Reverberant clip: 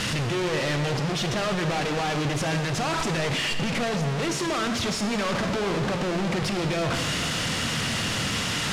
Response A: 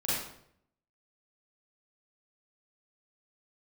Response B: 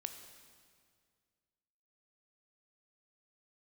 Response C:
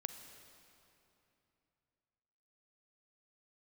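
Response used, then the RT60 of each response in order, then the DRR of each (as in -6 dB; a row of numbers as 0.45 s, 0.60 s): B; 0.70 s, 2.0 s, 3.0 s; -10.0 dB, 6.5 dB, 8.0 dB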